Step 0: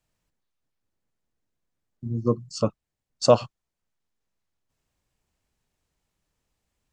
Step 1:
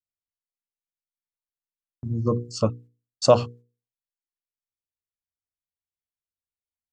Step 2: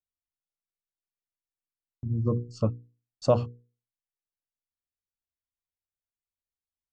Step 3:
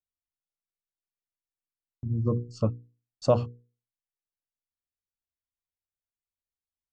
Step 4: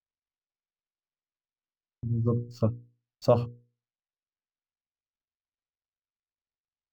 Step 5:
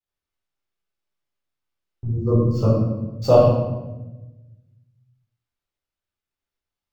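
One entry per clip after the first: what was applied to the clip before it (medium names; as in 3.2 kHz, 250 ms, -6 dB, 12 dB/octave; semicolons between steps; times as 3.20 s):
gate -47 dBFS, range -32 dB; peaking EQ 89 Hz +8 dB 0.85 oct; hum notches 60/120/180/240/300/360/420/480 Hz; trim +1 dB
tilt EQ -2.5 dB/octave; trim -8.5 dB
no audible change
median filter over 5 samples
reverberation RT60 1.1 s, pre-delay 10 ms, DRR -7 dB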